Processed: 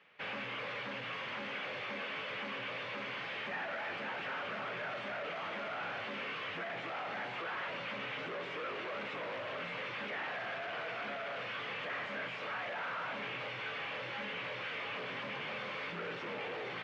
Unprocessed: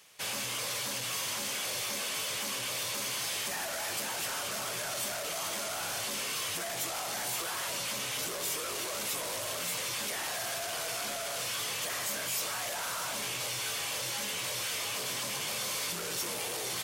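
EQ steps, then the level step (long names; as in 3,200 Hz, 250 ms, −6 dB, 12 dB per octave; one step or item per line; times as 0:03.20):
loudspeaker in its box 160–2,500 Hz, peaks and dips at 350 Hz −4 dB, 680 Hz −4 dB, 1,000 Hz −4 dB
+1.0 dB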